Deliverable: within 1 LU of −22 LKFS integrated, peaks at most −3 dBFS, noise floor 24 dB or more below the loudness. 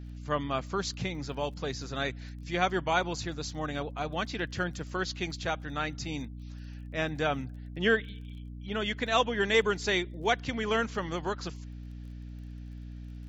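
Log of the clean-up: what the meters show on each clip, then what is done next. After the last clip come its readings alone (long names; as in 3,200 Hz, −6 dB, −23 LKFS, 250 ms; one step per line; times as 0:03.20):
crackle rate 22 per second; mains hum 60 Hz; hum harmonics up to 300 Hz; level of the hum −39 dBFS; integrated loudness −31.5 LKFS; sample peak −10.5 dBFS; target loudness −22.0 LKFS
→ click removal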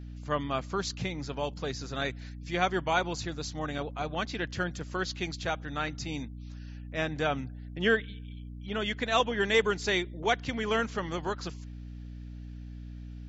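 crackle rate 0 per second; mains hum 60 Hz; hum harmonics up to 300 Hz; level of the hum −39 dBFS
→ hum removal 60 Hz, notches 5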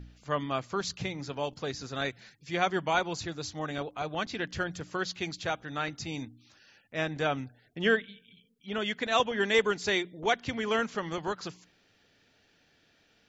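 mains hum none found; integrated loudness −31.5 LKFS; sample peak −11.0 dBFS; target loudness −22.0 LKFS
→ level +9.5 dB
brickwall limiter −3 dBFS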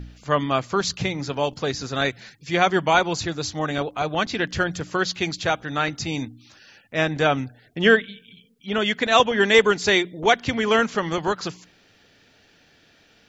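integrated loudness −22.0 LKFS; sample peak −3.0 dBFS; background noise floor −57 dBFS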